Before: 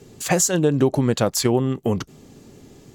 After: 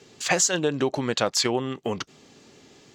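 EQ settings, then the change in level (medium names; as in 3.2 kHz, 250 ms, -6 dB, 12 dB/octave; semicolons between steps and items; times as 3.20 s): distance through air 160 m; tilt EQ +4 dB/octave; 0.0 dB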